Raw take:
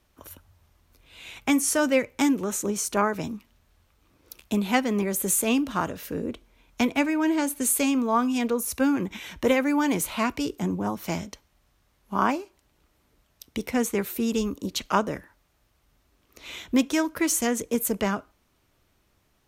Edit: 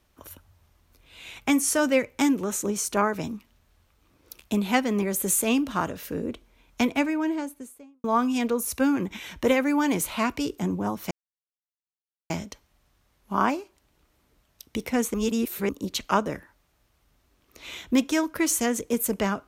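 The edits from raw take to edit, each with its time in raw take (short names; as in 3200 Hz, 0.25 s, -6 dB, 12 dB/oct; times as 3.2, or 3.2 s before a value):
6.84–8.04 studio fade out
11.11 insert silence 1.19 s
13.95–14.5 reverse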